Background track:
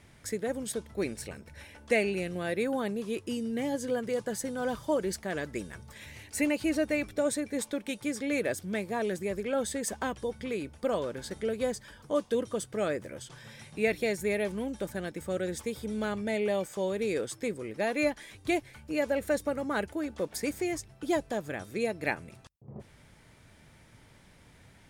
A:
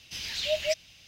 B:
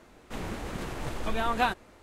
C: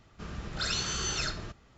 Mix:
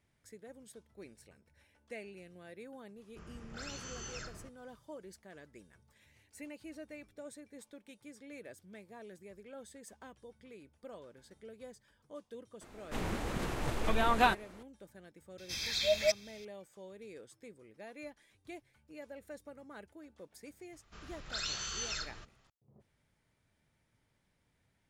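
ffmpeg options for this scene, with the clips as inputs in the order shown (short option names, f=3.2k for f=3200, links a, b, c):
-filter_complex "[3:a]asplit=2[a][b];[0:a]volume=-19.5dB[c];[a]equalizer=f=3.9k:w=3.4:g=-11[d];[1:a]asuperstop=centerf=2900:order=12:qfactor=6.5[e];[b]equalizer=f=180:w=0.32:g=-11[f];[d]atrim=end=1.77,asetpts=PTS-STARTPTS,volume=-11.5dB,afade=t=in:d=0.004:c=hsin,afade=t=out:st=1.766:d=0.004:c=hsin,adelay=2970[g];[2:a]atrim=end=2.02,asetpts=PTS-STARTPTS,volume=-0.5dB,afade=t=in:d=0.004:c=hsin,afade=t=out:st=2.016:d=0.004:c=hsin,adelay=12610[h];[e]atrim=end=1.07,asetpts=PTS-STARTPTS,volume=-1dB,afade=t=in:d=0.004:c=hsin,afade=t=out:st=1.066:d=0.004:c=hsin,adelay=15380[i];[f]atrim=end=1.77,asetpts=PTS-STARTPTS,volume=-5.5dB,afade=t=in:d=0.004:c=hsin,afade=t=out:st=1.766:d=0.004:c=hsin,adelay=20730[j];[c][g][h][i][j]amix=inputs=5:normalize=0"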